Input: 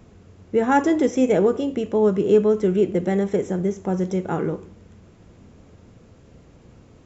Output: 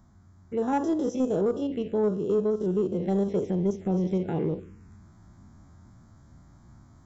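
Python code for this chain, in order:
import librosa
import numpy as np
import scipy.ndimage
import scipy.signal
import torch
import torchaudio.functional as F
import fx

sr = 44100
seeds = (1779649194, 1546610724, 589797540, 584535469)

y = fx.spec_steps(x, sr, hold_ms=50)
y = fx.env_phaser(y, sr, low_hz=440.0, high_hz=2200.0, full_db=-18.0)
y = fx.rider(y, sr, range_db=3, speed_s=0.5)
y = 10.0 ** (-12.0 / 20.0) * np.tanh(y / 10.0 ** (-12.0 / 20.0))
y = y * 10.0 ** (-3.5 / 20.0)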